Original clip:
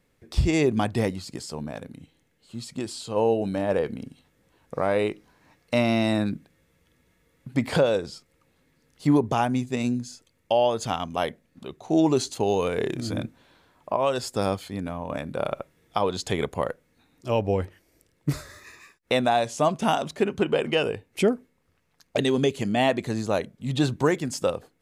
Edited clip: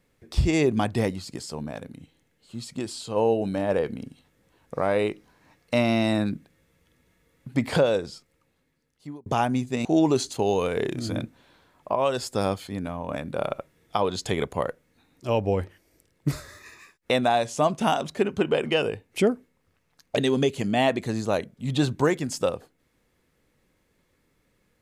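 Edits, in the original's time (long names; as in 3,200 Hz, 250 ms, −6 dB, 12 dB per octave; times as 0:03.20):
0:07.99–0:09.26: fade out
0:09.85–0:11.86: remove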